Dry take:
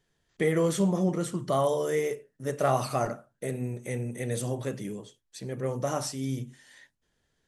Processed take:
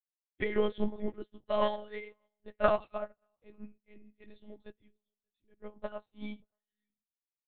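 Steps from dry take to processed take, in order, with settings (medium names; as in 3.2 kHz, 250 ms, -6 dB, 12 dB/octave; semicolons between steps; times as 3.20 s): expander on every frequency bin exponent 1.5; comb 3.4 ms, depth 46%; on a send: delay 588 ms -22.5 dB; on the sum: spring tank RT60 1.2 s, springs 40 ms, chirp 75 ms, DRR 18.5 dB; in parallel at -8 dB: saturation -29 dBFS, distortion -8 dB; on the sum: monotone LPC vocoder at 8 kHz 210 Hz; treble shelf 2.7 kHz +8.5 dB; upward expansion 2.5:1, over -46 dBFS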